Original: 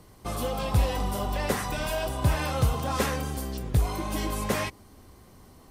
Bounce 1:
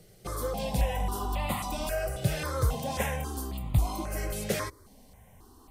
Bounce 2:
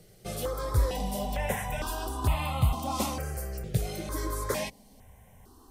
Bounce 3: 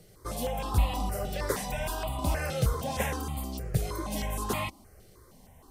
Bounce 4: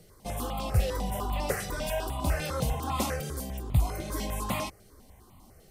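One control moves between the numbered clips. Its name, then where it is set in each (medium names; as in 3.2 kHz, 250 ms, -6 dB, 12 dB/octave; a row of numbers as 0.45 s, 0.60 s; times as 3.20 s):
stepped phaser, rate: 3.7 Hz, 2.2 Hz, 6.4 Hz, 10 Hz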